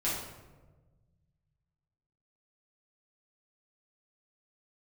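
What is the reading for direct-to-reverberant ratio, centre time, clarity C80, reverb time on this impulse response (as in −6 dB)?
−9.0 dB, 63 ms, 4.5 dB, 1.3 s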